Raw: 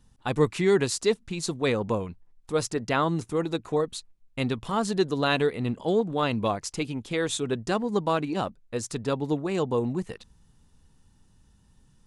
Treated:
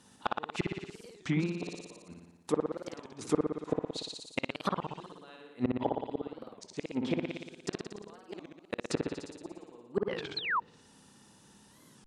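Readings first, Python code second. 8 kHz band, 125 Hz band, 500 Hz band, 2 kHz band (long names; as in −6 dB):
−13.0 dB, −9.5 dB, −10.5 dB, −7.0 dB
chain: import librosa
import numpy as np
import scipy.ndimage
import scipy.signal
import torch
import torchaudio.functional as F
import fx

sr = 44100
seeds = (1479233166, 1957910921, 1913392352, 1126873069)

p1 = scipy.signal.sosfilt(scipy.signal.butter(2, 250.0, 'highpass', fs=sr, output='sos'), x)
p2 = fx.gate_flip(p1, sr, shuts_db=-22.0, range_db=-38)
p3 = fx.rider(p2, sr, range_db=4, speed_s=2.0)
p4 = p2 + (p3 * 10.0 ** (2.5 / 20.0))
p5 = fx.room_flutter(p4, sr, wall_m=10.0, rt60_s=1.1)
p6 = fx.spec_paint(p5, sr, seeds[0], shape='fall', start_s=10.37, length_s=0.23, low_hz=880.0, high_hz=5000.0, level_db=-27.0)
p7 = np.clip(10.0 ** (16.0 / 20.0) * p6, -1.0, 1.0) / 10.0 ** (16.0 / 20.0)
p8 = fx.env_lowpass_down(p7, sr, base_hz=1600.0, full_db=-26.5)
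y = fx.record_warp(p8, sr, rpm=33.33, depth_cents=250.0)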